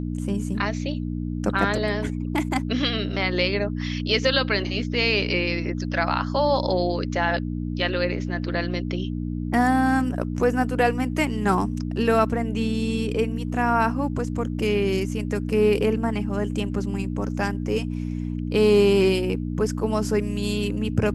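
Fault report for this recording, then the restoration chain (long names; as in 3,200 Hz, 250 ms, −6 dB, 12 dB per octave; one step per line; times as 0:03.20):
mains hum 60 Hz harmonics 5 −28 dBFS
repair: hum removal 60 Hz, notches 5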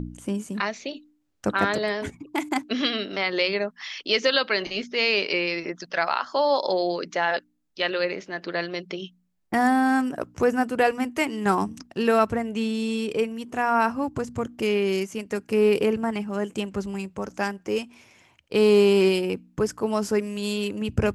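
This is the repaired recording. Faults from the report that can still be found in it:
none of them is left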